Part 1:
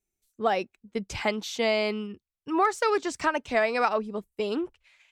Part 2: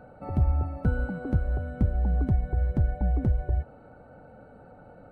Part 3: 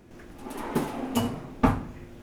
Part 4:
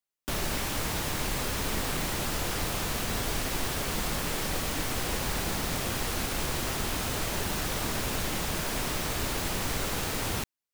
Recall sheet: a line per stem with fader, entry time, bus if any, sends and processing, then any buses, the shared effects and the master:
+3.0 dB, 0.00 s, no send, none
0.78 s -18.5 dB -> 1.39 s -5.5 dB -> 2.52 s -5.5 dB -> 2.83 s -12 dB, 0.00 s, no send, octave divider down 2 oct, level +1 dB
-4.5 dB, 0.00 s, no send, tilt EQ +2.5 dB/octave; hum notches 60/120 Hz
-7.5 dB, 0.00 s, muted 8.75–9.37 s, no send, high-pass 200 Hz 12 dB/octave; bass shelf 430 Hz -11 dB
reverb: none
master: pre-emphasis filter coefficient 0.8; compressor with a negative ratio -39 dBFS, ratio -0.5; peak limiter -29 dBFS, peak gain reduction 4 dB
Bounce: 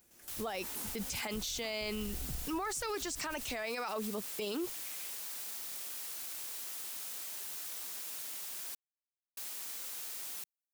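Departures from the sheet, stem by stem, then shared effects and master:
stem 1 +3.0 dB -> +13.5 dB; master: missing compressor with a negative ratio -39 dBFS, ratio -0.5

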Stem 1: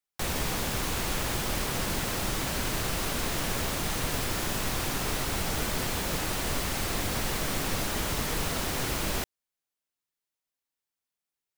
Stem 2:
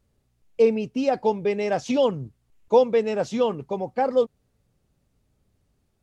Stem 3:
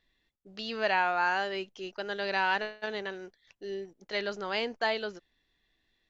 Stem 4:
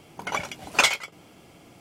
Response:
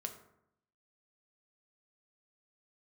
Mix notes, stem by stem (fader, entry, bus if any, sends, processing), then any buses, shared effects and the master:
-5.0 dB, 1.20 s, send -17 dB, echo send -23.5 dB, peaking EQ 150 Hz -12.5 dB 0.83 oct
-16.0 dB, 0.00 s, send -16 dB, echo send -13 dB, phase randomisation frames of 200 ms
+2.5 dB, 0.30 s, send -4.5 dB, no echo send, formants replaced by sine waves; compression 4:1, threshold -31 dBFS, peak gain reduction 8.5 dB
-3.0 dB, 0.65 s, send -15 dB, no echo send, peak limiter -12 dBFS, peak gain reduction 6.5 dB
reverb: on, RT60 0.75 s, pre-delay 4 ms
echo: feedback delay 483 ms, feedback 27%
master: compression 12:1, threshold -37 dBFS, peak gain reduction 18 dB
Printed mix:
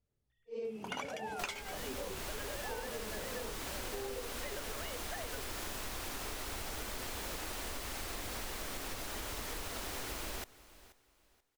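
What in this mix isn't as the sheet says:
stem 3 +2.5 dB -> -7.0 dB; stem 4: missing peak limiter -12 dBFS, peak gain reduction 6.5 dB

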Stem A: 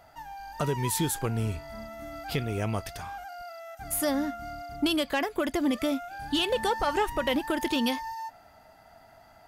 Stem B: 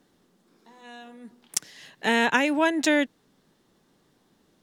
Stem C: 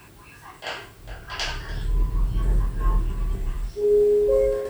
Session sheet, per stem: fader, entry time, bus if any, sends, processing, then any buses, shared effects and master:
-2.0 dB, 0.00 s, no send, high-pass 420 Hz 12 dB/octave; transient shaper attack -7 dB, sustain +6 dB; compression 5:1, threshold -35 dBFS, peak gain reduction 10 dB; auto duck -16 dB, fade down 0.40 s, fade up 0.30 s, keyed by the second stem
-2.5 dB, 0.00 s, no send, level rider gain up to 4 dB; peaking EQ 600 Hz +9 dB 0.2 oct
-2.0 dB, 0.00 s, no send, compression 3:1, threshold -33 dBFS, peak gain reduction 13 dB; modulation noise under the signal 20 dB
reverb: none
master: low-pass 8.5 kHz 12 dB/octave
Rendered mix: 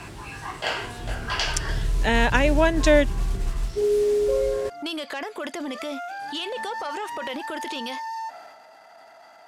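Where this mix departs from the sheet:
stem A -2.0 dB -> +6.5 dB; stem C -2.0 dB -> +9.0 dB

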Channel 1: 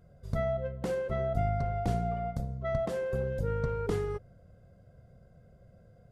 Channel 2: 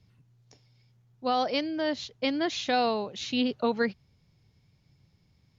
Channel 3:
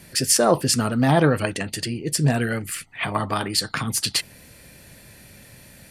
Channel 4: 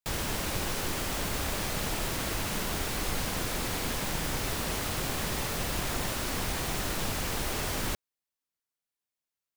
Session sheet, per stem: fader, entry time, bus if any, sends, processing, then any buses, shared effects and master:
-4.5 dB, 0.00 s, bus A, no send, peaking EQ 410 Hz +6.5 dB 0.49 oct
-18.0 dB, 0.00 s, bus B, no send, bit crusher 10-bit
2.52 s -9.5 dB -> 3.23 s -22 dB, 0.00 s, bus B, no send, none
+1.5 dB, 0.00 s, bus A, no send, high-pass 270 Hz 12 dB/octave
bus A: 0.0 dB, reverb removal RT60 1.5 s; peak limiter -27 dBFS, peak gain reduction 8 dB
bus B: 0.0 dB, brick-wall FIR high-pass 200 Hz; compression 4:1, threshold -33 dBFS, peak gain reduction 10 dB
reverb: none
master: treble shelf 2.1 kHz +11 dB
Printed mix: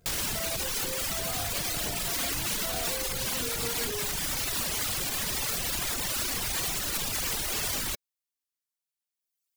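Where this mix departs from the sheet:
stem 3: muted; stem 4: missing high-pass 270 Hz 12 dB/octave

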